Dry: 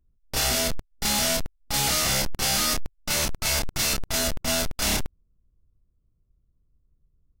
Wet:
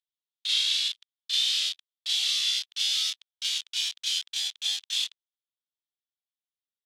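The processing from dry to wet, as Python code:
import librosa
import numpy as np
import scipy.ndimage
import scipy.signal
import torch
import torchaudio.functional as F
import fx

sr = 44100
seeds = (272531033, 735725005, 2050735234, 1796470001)

y = fx.speed_glide(x, sr, from_pct=72, to_pct=144)
y = fx.ladder_bandpass(y, sr, hz=3700.0, resonance_pct=70)
y = y * librosa.db_to_amplitude(7.0)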